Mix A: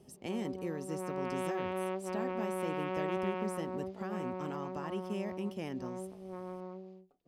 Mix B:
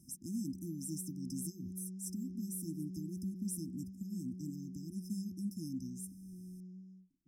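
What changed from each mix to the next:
speech: remove LPF 3200 Hz 6 dB/oct; master: add brick-wall FIR band-stop 340–5000 Hz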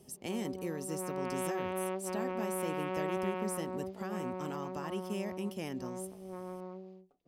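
master: remove brick-wall FIR band-stop 340–5000 Hz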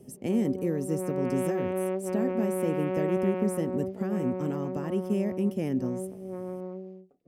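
background: add low shelf 240 Hz -5.5 dB; master: add graphic EQ 125/250/500/1000/2000/4000 Hz +11/+9/+8/-4/+3/-7 dB

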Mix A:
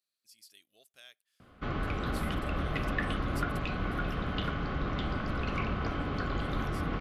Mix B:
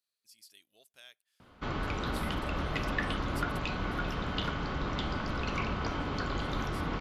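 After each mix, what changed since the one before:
background: add tone controls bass -2 dB, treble +10 dB; master: remove Butterworth band-stop 920 Hz, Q 7.3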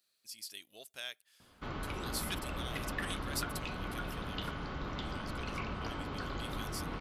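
speech +11.0 dB; background -6.0 dB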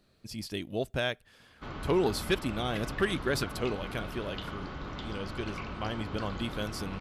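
speech: remove differentiator

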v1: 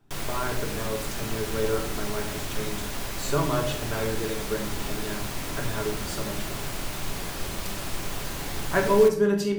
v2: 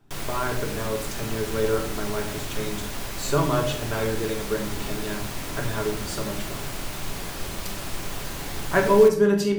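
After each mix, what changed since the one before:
speech +3.0 dB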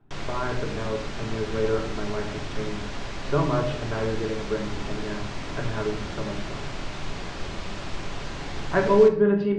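speech: add air absorption 400 m; master: add Bessel low-pass 4400 Hz, order 8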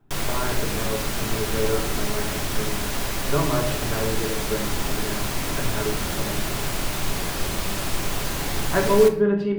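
background +6.0 dB; master: remove Bessel low-pass 4400 Hz, order 8

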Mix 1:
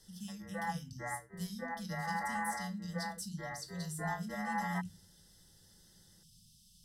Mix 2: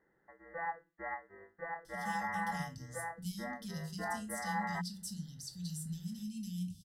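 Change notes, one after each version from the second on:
speech: entry +1.85 s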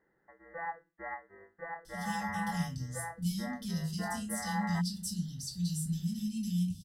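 speech: send +9.0 dB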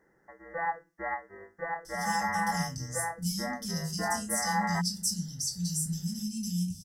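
background +7.5 dB; master: add resonant high shelf 4600 Hz +6.5 dB, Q 3

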